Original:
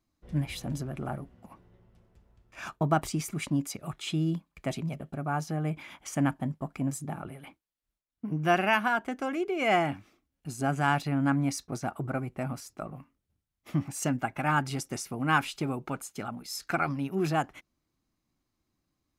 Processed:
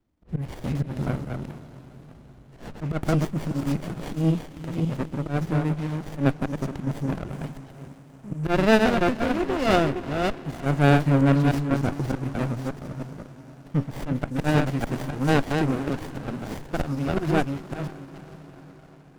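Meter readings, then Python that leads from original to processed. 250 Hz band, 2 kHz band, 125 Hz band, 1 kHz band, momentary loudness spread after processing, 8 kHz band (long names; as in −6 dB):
+7.0 dB, +1.5 dB, +8.0 dB, +1.0 dB, 19 LU, −5.0 dB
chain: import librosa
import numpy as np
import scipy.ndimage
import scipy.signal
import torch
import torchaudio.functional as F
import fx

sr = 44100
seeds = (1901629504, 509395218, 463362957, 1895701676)

p1 = fx.reverse_delay(x, sr, ms=303, wet_db=-4.5)
p2 = fx.auto_swell(p1, sr, attack_ms=109.0)
p3 = p2 + fx.echo_diffused(p2, sr, ms=465, feedback_pct=57, wet_db=-15, dry=0)
p4 = fx.running_max(p3, sr, window=33)
y = p4 * 10.0 ** (6.0 / 20.0)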